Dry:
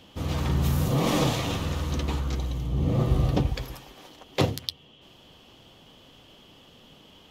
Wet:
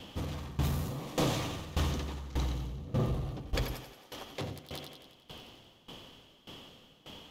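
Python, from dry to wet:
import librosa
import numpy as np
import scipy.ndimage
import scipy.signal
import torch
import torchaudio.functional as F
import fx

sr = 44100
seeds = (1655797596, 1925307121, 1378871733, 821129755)

p1 = fx.over_compress(x, sr, threshold_db=-31.0, ratio=-1.0)
p2 = x + (p1 * librosa.db_to_amplitude(-0.5))
p3 = 10.0 ** (-18.5 / 20.0) * np.tanh(p2 / 10.0 ** (-18.5 / 20.0))
p4 = fx.echo_thinned(p3, sr, ms=89, feedback_pct=78, hz=160.0, wet_db=-8)
p5 = fx.tremolo_decay(p4, sr, direction='decaying', hz=1.7, depth_db=19)
y = p5 * librosa.db_to_amplitude(-3.0)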